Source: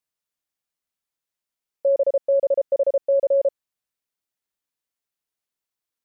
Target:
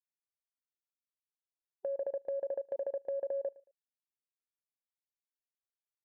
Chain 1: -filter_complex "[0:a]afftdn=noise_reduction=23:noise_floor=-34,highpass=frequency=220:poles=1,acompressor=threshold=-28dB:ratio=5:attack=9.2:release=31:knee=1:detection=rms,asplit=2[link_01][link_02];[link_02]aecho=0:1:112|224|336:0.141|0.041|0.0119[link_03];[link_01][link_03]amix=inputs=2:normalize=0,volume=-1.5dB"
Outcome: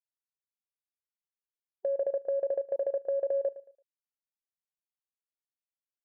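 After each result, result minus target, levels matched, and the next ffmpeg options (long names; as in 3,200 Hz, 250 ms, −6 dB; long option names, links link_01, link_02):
downward compressor: peak gain reduction −6 dB; echo-to-direct +6 dB
-filter_complex "[0:a]afftdn=noise_reduction=23:noise_floor=-34,highpass=frequency=220:poles=1,acompressor=threshold=-35.5dB:ratio=5:attack=9.2:release=31:knee=1:detection=rms,asplit=2[link_01][link_02];[link_02]aecho=0:1:112|224|336:0.141|0.041|0.0119[link_03];[link_01][link_03]amix=inputs=2:normalize=0,volume=-1.5dB"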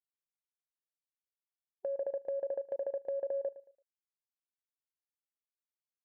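echo-to-direct +6 dB
-filter_complex "[0:a]afftdn=noise_reduction=23:noise_floor=-34,highpass=frequency=220:poles=1,acompressor=threshold=-35.5dB:ratio=5:attack=9.2:release=31:knee=1:detection=rms,asplit=2[link_01][link_02];[link_02]aecho=0:1:112|224:0.0708|0.0205[link_03];[link_01][link_03]amix=inputs=2:normalize=0,volume=-1.5dB"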